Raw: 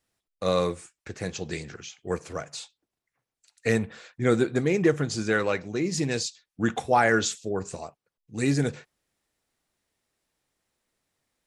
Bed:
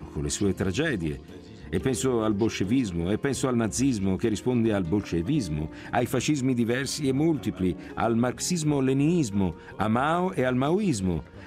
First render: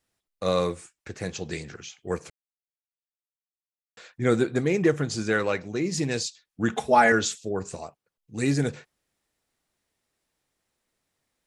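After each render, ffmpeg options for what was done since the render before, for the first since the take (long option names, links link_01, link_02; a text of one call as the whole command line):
ffmpeg -i in.wav -filter_complex "[0:a]asettb=1/sr,asplit=3[link_01][link_02][link_03];[link_01]atrim=end=6.724[link_04];[link_02]atrim=start=6.72:end=7.12,asetpts=PTS-STARTPTS,afade=type=in:duration=0.004:curve=qsin,afade=type=out:start_time=0.396:duration=0.004:curve=qsin,aecho=1:1:4.7:0.86,atrim=end_sample=17640[link_05];[link_03]atrim=start=7.116[link_06];[link_04][link_05]acrossfade=duration=0.004:curve1=hsin:curve2=qsin[link_07];[link_07][link_06]acrossfade=duration=0.004:curve1=qsin:curve2=hsin,asplit=3[link_08][link_09][link_10];[link_08]atrim=end=2.3,asetpts=PTS-STARTPTS,afade=type=out:start_time=2.296:duration=0.004:curve=hsin[link_11];[link_09]atrim=start=2.3:end=3.97,asetpts=PTS-STARTPTS,volume=0[link_12];[link_10]atrim=start=3.97,asetpts=PTS-STARTPTS,afade=type=in:duration=0.004:curve=hsin[link_13];[link_11][link_12][link_13]concat=n=3:v=0:a=1" out.wav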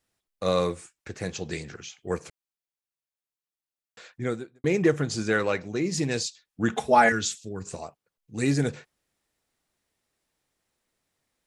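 ffmpeg -i in.wav -filter_complex "[0:a]asettb=1/sr,asplit=3[link_01][link_02][link_03];[link_01]atrim=end=7.094[link_04];[link_02]atrim=start=7.09:end=7.67,asetpts=PTS-STARTPTS,afade=type=in:duration=0.004:curve=qsin,afade=type=out:start_time=0.576:duration=0.004:curve=qsin,equalizer=frequency=650:width_type=o:width=1.9:gain=-13[link_05];[link_03]atrim=start=7.666[link_06];[link_04][link_05]acrossfade=duration=0.004:curve1=hsin:curve2=qsin[link_07];[link_07][link_06]acrossfade=duration=0.004:curve1=qsin:curve2=hsin,asplit=2[link_08][link_09];[link_08]atrim=end=4.64,asetpts=PTS-STARTPTS,afade=type=out:start_time=4.12:duration=0.52:curve=qua[link_10];[link_09]atrim=start=4.64,asetpts=PTS-STARTPTS,afade=type=in:duration=0.004:curve=hsin[link_11];[link_10][link_11]concat=n=2:v=0:a=1" out.wav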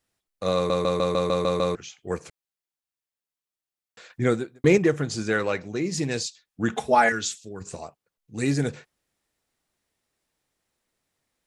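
ffmpeg -i in.wav -filter_complex "[0:a]asettb=1/sr,asplit=3[link_01][link_02][link_03];[link_01]atrim=end=4.104[link_04];[link_02]atrim=start=4.1:end=4.78,asetpts=PTS-STARTPTS,afade=type=in:duration=0.004:curve=qsin,afade=type=out:start_time=0.676:duration=0.004:curve=qsin,acontrast=84[link_05];[link_03]atrim=start=4.776[link_06];[link_04][link_05]acrossfade=duration=0.004:curve1=hsin:curve2=qsin[link_07];[link_07][link_06]acrossfade=duration=0.004:curve1=qsin:curve2=hsin,asettb=1/sr,asplit=3[link_08][link_09][link_10];[link_08]atrim=end=6.954[link_11];[link_09]atrim=start=6.95:end=7.61,asetpts=PTS-STARTPTS,afade=type=in:duration=0.004:curve=qsin,afade=type=out:start_time=0.656:duration=0.004:curve=qsin,lowshelf=frequency=230:gain=-6.5[link_12];[link_10]atrim=start=7.606[link_13];[link_11][link_12]acrossfade=duration=0.004:curve1=hsin:curve2=qsin[link_14];[link_14][link_13]acrossfade=duration=0.004:curve1=qsin:curve2=hsin,asplit=9[link_15][link_16][link_17][link_18][link_19][link_20][link_21][link_22][link_23];[link_15]atrim=end=0.702[link_24];[link_16]atrim=start=0.548:end=0.702[link_25];[link_17]atrim=start=0.548:end=0.702[link_26];[link_18]atrim=start=0.548:end=0.702[link_27];[link_19]atrim=start=0.548:end=0.702[link_28];[link_20]atrim=start=0.548:end=0.702[link_29];[link_21]atrim=start=0.548:end=0.702[link_30];[link_22]atrim=start=0.548:end=0.702[link_31];[link_23]atrim=start=1.748[link_32];[link_24][link_25]acrossfade=duration=0.004:curve1=hsin:curve2=hsin[link_33];[link_33][link_26]acrossfade=duration=0.004:curve1=hsin:curve2=hsin[link_34];[link_34][link_27]acrossfade=duration=0.004:curve1=hsin:curve2=hsin[link_35];[link_35][link_28]acrossfade=duration=0.004:curve1=hsin:curve2=hsin[link_36];[link_36][link_29]acrossfade=duration=0.004:curve1=hsin:curve2=hsin[link_37];[link_37][link_30]acrossfade=duration=0.004:curve1=hsin:curve2=hsin[link_38];[link_38][link_31]acrossfade=duration=0.004:curve1=hsin:curve2=hsin[link_39];[link_39][link_32]acrossfade=duration=0.004:curve1=hsin:curve2=hsin" out.wav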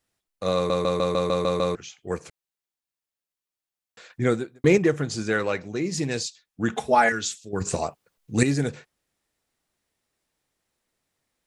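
ffmpeg -i in.wav -filter_complex "[0:a]asplit=3[link_01][link_02][link_03];[link_01]atrim=end=7.532[link_04];[link_02]atrim=start=7.528:end=8.432,asetpts=PTS-STARTPTS,volume=10.5dB[link_05];[link_03]atrim=start=8.428[link_06];[link_04][link_05]acrossfade=duration=0.004:curve1=hsin:curve2=hsin[link_07];[link_07][link_06]acrossfade=duration=0.004:curve1=hsin:curve2=hsin" out.wav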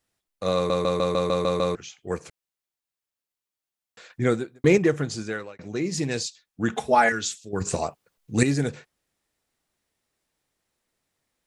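ffmpeg -i in.wav -filter_complex "[0:a]asplit=2[link_01][link_02];[link_01]atrim=end=5.59,asetpts=PTS-STARTPTS,afade=type=out:start_time=5.04:duration=0.55[link_03];[link_02]atrim=start=5.59,asetpts=PTS-STARTPTS,afade=type=in:duration=0.004:curve=hsin[link_04];[link_03][link_04]concat=n=2:v=0:a=1" out.wav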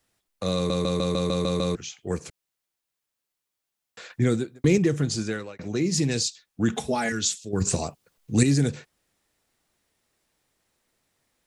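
ffmpeg -i in.wav -filter_complex "[0:a]asplit=2[link_01][link_02];[link_02]alimiter=limit=-17.5dB:level=0:latency=1:release=19,volume=-2dB[link_03];[link_01][link_03]amix=inputs=2:normalize=0,acrossover=split=330|3000[link_04][link_05][link_06];[link_05]acompressor=threshold=-39dB:ratio=2[link_07];[link_04][link_07][link_06]amix=inputs=3:normalize=0" out.wav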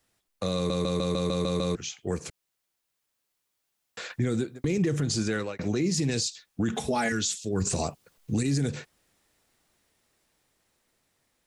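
ffmpeg -i in.wav -af "dynaudnorm=framelen=750:gausssize=7:maxgain=6dB,alimiter=limit=-18.5dB:level=0:latency=1:release=95" out.wav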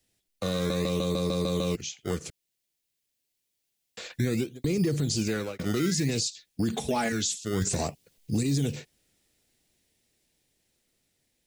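ffmpeg -i in.wav -filter_complex "[0:a]acrossover=split=420|1700[link_01][link_02][link_03];[link_01]acrusher=samples=18:mix=1:aa=0.000001:lfo=1:lforange=18:lforate=0.57[link_04];[link_02]adynamicsmooth=sensitivity=3.5:basefreq=670[link_05];[link_04][link_05][link_03]amix=inputs=3:normalize=0" out.wav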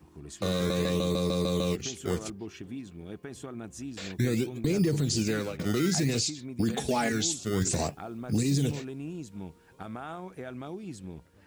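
ffmpeg -i in.wav -i bed.wav -filter_complex "[1:a]volume=-15.5dB[link_01];[0:a][link_01]amix=inputs=2:normalize=0" out.wav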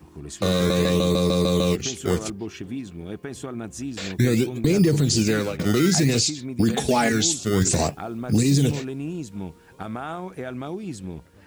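ffmpeg -i in.wav -af "volume=7.5dB" out.wav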